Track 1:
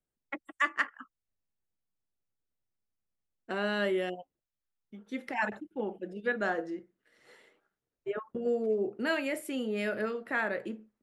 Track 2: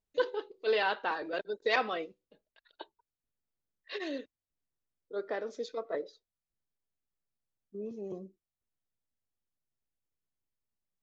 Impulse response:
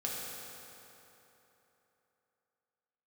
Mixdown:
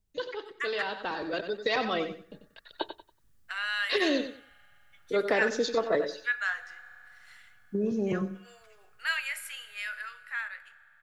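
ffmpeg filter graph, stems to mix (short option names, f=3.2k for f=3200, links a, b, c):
-filter_complex "[0:a]highpass=f=1.3k:w=0.5412,highpass=f=1.3k:w=1.3066,volume=-6.5dB,asplit=2[a][b];[b]volume=-14.5dB[c];[1:a]bass=f=250:g=13,treble=f=4k:g=4,acrossover=split=580|1200|3000[d][e][f][g];[d]acompressor=threshold=-42dB:ratio=4[h];[e]acompressor=threshold=-42dB:ratio=4[i];[f]acompressor=threshold=-45dB:ratio=4[j];[g]acompressor=threshold=-45dB:ratio=4[k];[h][i][j][k]amix=inputs=4:normalize=0,volume=2dB,asplit=2[l][m];[m]volume=-10dB[n];[2:a]atrim=start_sample=2205[o];[c][o]afir=irnorm=-1:irlink=0[p];[n]aecho=0:1:93|186|279|372:1|0.23|0.0529|0.0122[q];[a][l][p][q]amix=inputs=4:normalize=0,dynaudnorm=f=210:g=17:m=10.5dB"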